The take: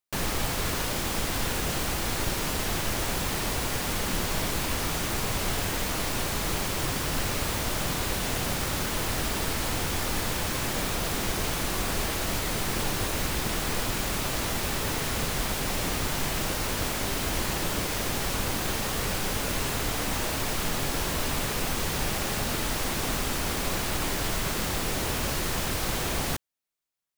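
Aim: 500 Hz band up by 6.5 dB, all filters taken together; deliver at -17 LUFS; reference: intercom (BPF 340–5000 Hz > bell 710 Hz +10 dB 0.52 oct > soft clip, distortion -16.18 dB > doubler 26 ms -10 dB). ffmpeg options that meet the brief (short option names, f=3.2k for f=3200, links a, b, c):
-filter_complex "[0:a]highpass=340,lowpass=5k,equalizer=f=500:t=o:g=4,equalizer=f=710:t=o:w=0.52:g=10,asoftclip=threshold=-24dB,asplit=2[a][b];[b]adelay=26,volume=-10dB[c];[a][c]amix=inputs=2:normalize=0,volume=13dB"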